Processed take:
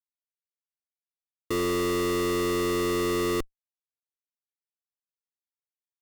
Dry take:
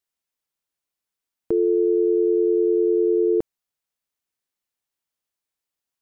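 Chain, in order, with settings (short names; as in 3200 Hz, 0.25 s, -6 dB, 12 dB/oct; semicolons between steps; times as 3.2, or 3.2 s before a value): Schmitt trigger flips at -35 dBFS; gain -2 dB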